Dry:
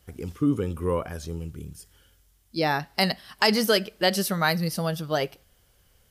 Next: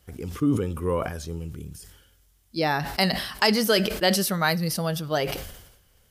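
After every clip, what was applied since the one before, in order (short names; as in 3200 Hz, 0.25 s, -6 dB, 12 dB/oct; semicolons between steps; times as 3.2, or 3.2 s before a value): sustainer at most 61 dB/s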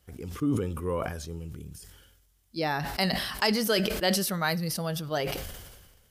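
sustainer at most 41 dB/s; gain -5 dB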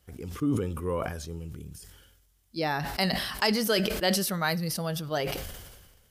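nothing audible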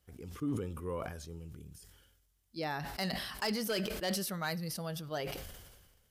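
hard clip -19.5 dBFS, distortion -18 dB; gain -8 dB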